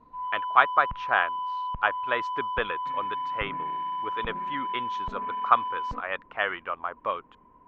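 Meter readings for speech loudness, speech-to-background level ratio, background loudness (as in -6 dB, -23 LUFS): -28.5 LUFS, 3.5 dB, -32.0 LUFS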